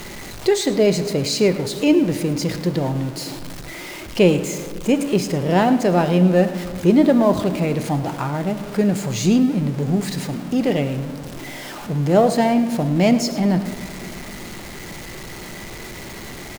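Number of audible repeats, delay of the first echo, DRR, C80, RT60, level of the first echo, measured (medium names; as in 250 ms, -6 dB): 1, 107 ms, 9.5 dB, 11.5 dB, 2.7 s, -15.0 dB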